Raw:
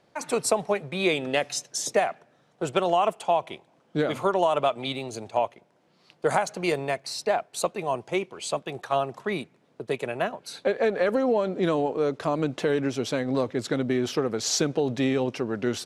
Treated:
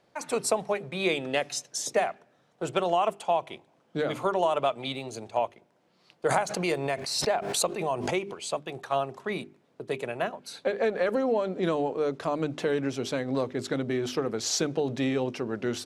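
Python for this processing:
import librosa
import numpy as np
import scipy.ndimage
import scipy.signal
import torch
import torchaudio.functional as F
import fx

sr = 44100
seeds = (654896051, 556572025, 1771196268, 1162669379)

y = fx.hum_notches(x, sr, base_hz=50, count=8)
y = fx.pre_swell(y, sr, db_per_s=48.0, at=(6.26, 8.33), fade=0.02)
y = F.gain(torch.from_numpy(y), -2.5).numpy()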